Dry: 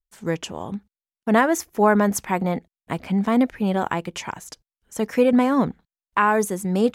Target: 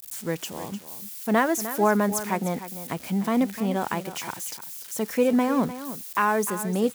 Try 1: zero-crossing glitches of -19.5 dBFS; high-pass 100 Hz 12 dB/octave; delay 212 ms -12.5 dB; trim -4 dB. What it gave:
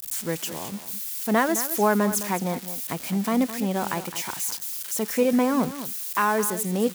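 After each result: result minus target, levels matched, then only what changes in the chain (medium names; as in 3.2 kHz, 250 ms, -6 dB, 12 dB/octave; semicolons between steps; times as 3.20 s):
echo 90 ms early; zero-crossing glitches: distortion +6 dB
change: delay 302 ms -12.5 dB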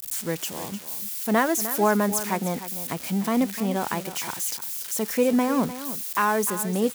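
zero-crossing glitches: distortion +6 dB
change: zero-crossing glitches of -26 dBFS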